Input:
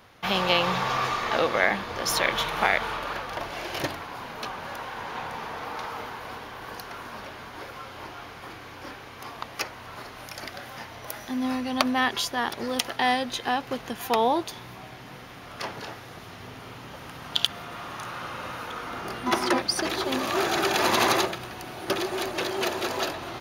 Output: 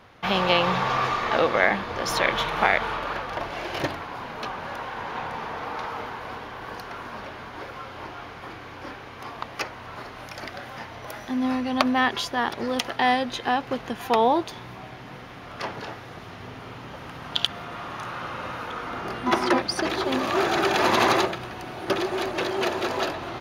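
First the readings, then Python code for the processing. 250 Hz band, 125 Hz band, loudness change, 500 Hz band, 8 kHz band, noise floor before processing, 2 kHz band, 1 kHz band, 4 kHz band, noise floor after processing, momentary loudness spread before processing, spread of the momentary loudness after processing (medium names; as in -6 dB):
+3.0 dB, +3.0 dB, +2.0 dB, +3.0 dB, -4.5 dB, -43 dBFS, +1.5 dB, +2.5 dB, -0.5 dB, -41 dBFS, 18 LU, 18 LU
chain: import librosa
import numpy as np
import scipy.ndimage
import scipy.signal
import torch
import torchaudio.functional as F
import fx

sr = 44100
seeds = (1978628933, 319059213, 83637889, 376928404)

y = fx.lowpass(x, sr, hz=3100.0, slope=6)
y = F.gain(torch.from_numpy(y), 3.0).numpy()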